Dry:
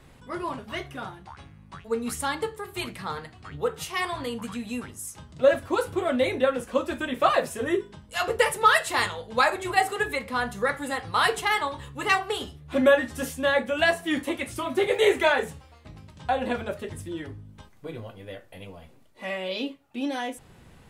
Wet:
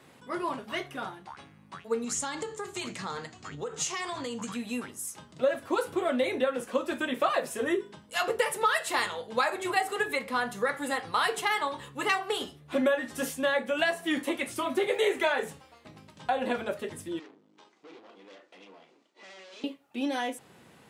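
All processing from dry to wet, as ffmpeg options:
ffmpeg -i in.wav -filter_complex "[0:a]asettb=1/sr,asplit=3[link_01][link_02][link_03];[link_01]atrim=end=2.044[link_04];[link_02]atrim=start=2.04:end=4.52,asetpts=PTS-STARTPTS,afade=type=in:duration=0.004:curve=qsin,afade=type=out:start_time=2.476:duration=0.004:curve=qsin,lowshelf=frequency=220:gain=6,acompressor=threshold=-30dB:ratio=12:attack=3.2:release=140:knee=1:detection=peak,lowpass=frequency=6900:width_type=q:width=5.3[link_05];[link_03]atrim=start=4.516[link_06];[link_04][link_05]acrossfade=duration=0.004:curve1=hsin:curve2=qsin[link_07];[link_07][link_06]acrossfade=duration=0.004:curve1=qsin:curve2=hsin,asettb=1/sr,asplit=3[link_08][link_09][link_10];[link_08]atrim=end=17.194[link_11];[link_09]atrim=start=17.19:end=19.64,asetpts=PTS-STARTPTS,afade=type=in:duration=0.004:curve=qsin,afade=type=out:start_time=2.446:duration=0.004:curve=qsin,asplit=2[link_12][link_13];[link_13]adelay=36,volume=-11dB[link_14];[link_12][link_14]amix=inputs=2:normalize=0,atrim=end_sample=108045,aeval=exprs='(tanh(200*val(0)+0.75)-tanh(0.75))/200':channel_layout=same,highpass=frequency=220:width=0.5412,highpass=frequency=220:width=1.3066,equalizer=frequency=240:width_type=q:width=4:gain=-5,equalizer=frequency=340:width_type=q:width=4:gain=4,equalizer=frequency=570:width_type=q:width=4:gain=-5,equalizer=frequency=1600:width_type=q:width=4:gain=-3,lowpass=frequency=6900:width=0.5412,lowpass=frequency=6900:width=1.3066[link_15];[link_10]atrim=start=19.636[link_16];[link_11][link_15]acrossfade=duration=0.004:curve1=hsin:curve2=qsin[link_17];[link_17][link_16]acrossfade=duration=0.004:curve1=qsin:curve2=hsin,highpass=200,acompressor=threshold=-24dB:ratio=3" out.wav

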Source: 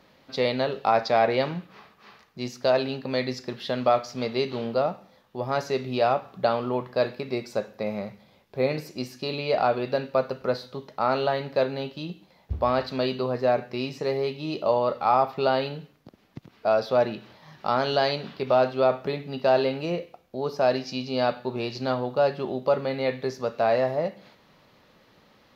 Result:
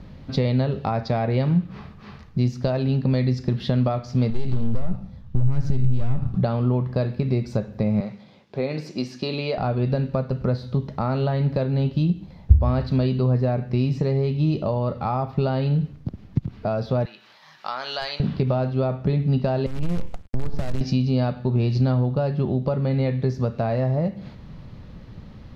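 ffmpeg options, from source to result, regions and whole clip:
ffmpeg -i in.wav -filter_complex "[0:a]asettb=1/sr,asplit=3[link_01][link_02][link_03];[link_01]atrim=end=4.304[link_04];[link_02]atrim=start=4.3:end=6.35,asetpts=PTS-STARTPTS,afade=type=in:duration=0.004:curve=qsin,afade=type=out:start_time=2.046:duration=0.004:curve=qsin,asubboost=boost=11:cutoff=190,acompressor=threshold=-29dB:ratio=6:attack=3.2:release=140:knee=1:detection=peak,aeval=exprs='(tanh(39.8*val(0)+0.8)-tanh(0.8))/39.8':channel_layout=same[link_05];[link_03]atrim=start=6.346[link_06];[link_04][link_05]acrossfade=duration=0.004:curve1=hsin:curve2=qsin[link_07];[link_07][link_06]acrossfade=duration=0.004:curve1=qsin:curve2=hsin,asettb=1/sr,asplit=3[link_08][link_09][link_10];[link_08]atrim=end=8.004[link_11];[link_09]atrim=start=8:end=9.58,asetpts=PTS-STARTPTS,afade=type=in:duration=0.004:curve=qsin,afade=type=out:start_time=1.576:duration=0.004:curve=qsin,highpass=190,lowpass=4700,aemphasis=mode=production:type=bsi[link_12];[link_10]atrim=start=9.576[link_13];[link_11][link_12]acrossfade=duration=0.004:curve1=hsin:curve2=qsin[link_14];[link_14][link_13]acrossfade=duration=0.004:curve1=qsin:curve2=hsin,asettb=1/sr,asplit=3[link_15][link_16][link_17];[link_15]atrim=end=17.054[link_18];[link_16]atrim=start=17.05:end=18.2,asetpts=PTS-STARTPTS,afade=type=in:duration=0.004:curve=qsin,afade=type=out:start_time=1.146:duration=0.004:curve=qsin,highpass=1100,highshelf=frequency=5700:gain=5.5,volume=16dB,asoftclip=hard,volume=-16dB[link_19];[link_17]atrim=start=18.196[link_20];[link_18][link_19]acrossfade=duration=0.004:curve1=hsin:curve2=qsin[link_21];[link_21][link_20]acrossfade=duration=0.004:curve1=qsin:curve2=hsin,asettb=1/sr,asplit=3[link_22][link_23][link_24];[link_22]atrim=end=19.664[link_25];[link_23]atrim=start=19.66:end=20.81,asetpts=PTS-STARTPTS,afade=type=in:duration=0.004:curve=qsin,afade=type=out:start_time=1.146:duration=0.004:curve=qsin,lowpass=4200,acompressor=threshold=-36dB:ratio=8:attack=3.2:release=140:knee=1:detection=peak,acrusher=bits=7:dc=4:mix=0:aa=0.000001[link_26];[link_24]atrim=start=20.806[link_27];[link_25][link_26]acrossfade=duration=0.004:curve1=hsin:curve2=qsin[link_28];[link_28][link_27]acrossfade=duration=0.004:curve1=qsin:curve2=hsin,aemphasis=mode=reproduction:type=bsi,acompressor=threshold=-32dB:ratio=2.5,bass=frequency=250:gain=13,treble=frequency=4000:gain=5,volume=4dB" out.wav

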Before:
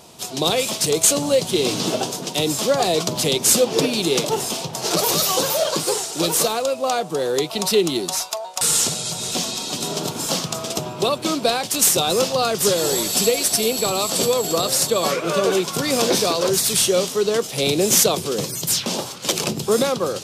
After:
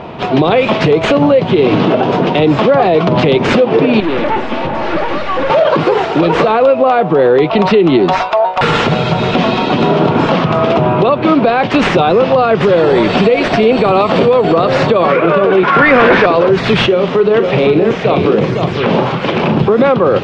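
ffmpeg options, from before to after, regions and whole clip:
ffmpeg -i in.wav -filter_complex "[0:a]asettb=1/sr,asplit=3[link_01][link_02][link_03];[link_01]atrim=end=4.004[link_04];[link_02]atrim=start=4:end=5.5,asetpts=PTS-STARTPTS,afade=type=in:duration=0.004:curve=qsin,afade=type=out:start_time=1.496:duration=0.004:curve=qsin,aecho=1:1:3.5:0.68,atrim=end_sample=66150,aeval=exprs='(tanh(39.8*val(0)+0.5)-tanh(0.5))/39.8':channel_layout=same[link_05];[link_03]atrim=start=5.496[link_06];[link_04][link_05]acrossfade=duration=0.004:curve1=hsin:curve2=qsin[link_07];[link_07][link_06]acrossfade=duration=0.004:curve1=qsin:curve2=hsin,asettb=1/sr,asplit=3[link_08][link_09][link_10];[link_08]atrim=end=15.634[link_11];[link_09]atrim=start=15.63:end=16.26,asetpts=PTS-STARTPTS,afade=type=in:duration=0.004:curve=qsin,afade=type=out:start_time=0.626:duration=0.004:curve=qsin,highpass=170,equalizer=frequency=1600:width=1.2:gain=13.5,asoftclip=type=hard:threshold=-17dB[link_12];[link_10]atrim=start=16.256[link_13];[link_11][link_12]acrossfade=duration=0.004:curve1=hsin:curve2=qsin[link_14];[link_14][link_13]acrossfade=duration=0.004:curve1=qsin:curve2=hsin,asettb=1/sr,asplit=3[link_15][link_16][link_17];[link_15]atrim=end=16.864[link_18];[link_16]atrim=start=16.86:end=19.61,asetpts=PTS-STARTPTS,afade=type=in:duration=0.004:curve=qsin,afade=type=out:start_time=2.746:duration=0.004:curve=qsin,acompressor=threshold=-26dB:ratio=10:attack=3.2:release=140:knee=1:detection=peak,asplit=2[link_19][link_20];[link_20]adelay=40,volume=-10.5dB[link_21];[link_19][link_21]amix=inputs=2:normalize=0,atrim=end_sample=121275,aecho=1:1:508:0.531,atrim=end_sample=121275[link_22];[link_17]atrim=start=19.606[link_23];[link_18][link_22]acrossfade=duration=0.004:curve1=hsin:curve2=qsin[link_24];[link_24][link_23]acrossfade=duration=0.004:curve1=qsin:curve2=hsin,lowpass=frequency=2400:width=0.5412,lowpass=frequency=2400:width=1.3066,acompressor=threshold=-23dB:ratio=6,alimiter=level_in=21.5dB:limit=-1dB:release=50:level=0:latency=1,volume=-1dB" out.wav

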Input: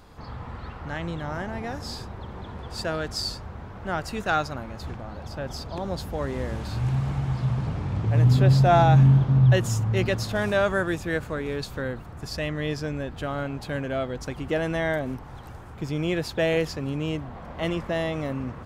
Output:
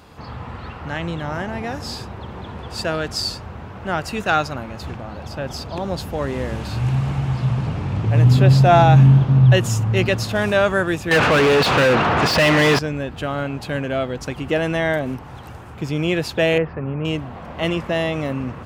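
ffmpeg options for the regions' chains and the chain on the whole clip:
ffmpeg -i in.wav -filter_complex "[0:a]asettb=1/sr,asplit=3[link_01][link_02][link_03];[link_01]atrim=end=11.114[link_04];[link_02]atrim=start=11.11:end=12.79,asetpts=PTS-STARTPTS,afade=type=in:duration=0.004:curve=qsin,afade=type=out:start_time=1.676:duration=0.004:curve=qsin,lowpass=4300,asplit=2[link_05][link_06];[link_06]highpass=frequency=720:poles=1,volume=39dB,asoftclip=type=tanh:threshold=-13dB[link_07];[link_05][link_07]amix=inputs=2:normalize=0,lowpass=frequency=2400:poles=1,volume=-6dB[link_08];[link_03]atrim=start=12.786[link_09];[link_04][link_08]acrossfade=duration=0.004:curve1=hsin:curve2=qsin[link_10];[link_10][link_09]acrossfade=duration=0.004:curve1=qsin:curve2=hsin,asettb=1/sr,asplit=3[link_11][link_12][link_13];[link_11]atrim=end=16.584[link_14];[link_12]atrim=start=16.58:end=17.05,asetpts=PTS-STARTPTS,afade=type=in:duration=0.004:curve=qsin,afade=type=out:start_time=0.466:duration=0.004:curve=qsin,lowpass=frequency=1900:width=0.5412,lowpass=frequency=1900:width=1.3066,equalizer=frequency=290:width=6.3:gain=-6.5[link_15];[link_13]atrim=start=17.046[link_16];[link_14][link_15]acrossfade=duration=0.004:curve1=hsin:curve2=qsin[link_17];[link_17][link_16]acrossfade=duration=0.004:curve1=qsin:curve2=hsin,highpass=67,equalizer=frequency=2700:width_type=o:width=0.36:gain=5,volume=5.5dB" out.wav

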